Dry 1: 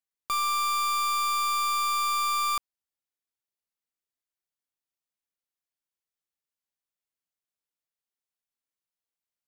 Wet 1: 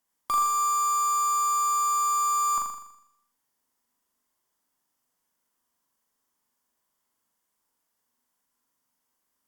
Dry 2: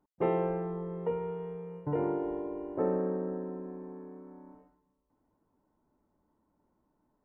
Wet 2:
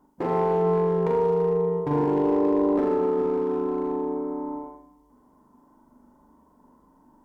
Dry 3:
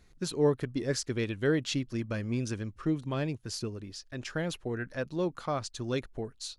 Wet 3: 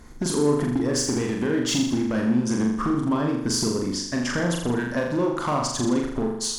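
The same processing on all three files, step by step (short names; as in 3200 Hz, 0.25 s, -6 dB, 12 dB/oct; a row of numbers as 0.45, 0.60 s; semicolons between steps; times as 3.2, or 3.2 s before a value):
thirty-one-band EQ 100 Hz -12 dB, 250 Hz +9 dB, 1000 Hz +9 dB, 2500 Hz -10 dB, 4000 Hz -10 dB; limiter -25 dBFS; compressor 12:1, threshold -35 dBFS; hard clip -34 dBFS; flutter echo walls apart 7 m, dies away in 0.76 s; Opus 256 kbps 48000 Hz; match loudness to -24 LUFS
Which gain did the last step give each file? +11.5, +11.0, +14.5 dB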